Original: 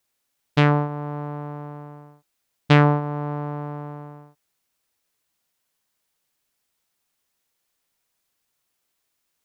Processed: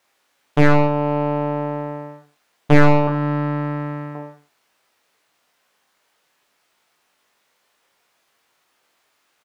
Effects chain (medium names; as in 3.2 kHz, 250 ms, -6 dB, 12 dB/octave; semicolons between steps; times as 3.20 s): 3.07–4.15 s: high-order bell 560 Hz -9.5 dB; overdrive pedal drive 24 dB, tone 1.4 kHz, clips at -2 dBFS; reverse bouncing-ball echo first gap 20 ms, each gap 1.2×, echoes 5